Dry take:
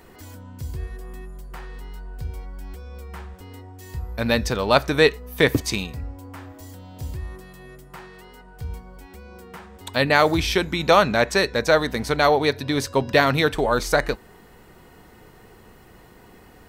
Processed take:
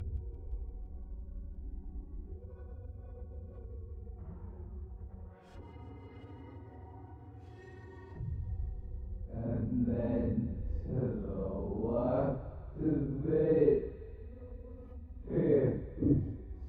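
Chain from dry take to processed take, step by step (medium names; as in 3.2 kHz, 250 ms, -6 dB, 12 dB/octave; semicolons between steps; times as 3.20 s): vibrato 0.56 Hz 9.8 cents; Paulstretch 4.9×, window 0.05 s, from 2.27 s; low-pass that closes with the level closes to 390 Hz, closed at -32.5 dBFS; on a send: thinning echo 172 ms, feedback 81%, high-pass 800 Hz, level -15 dB; on the sum: trim -8.5 dB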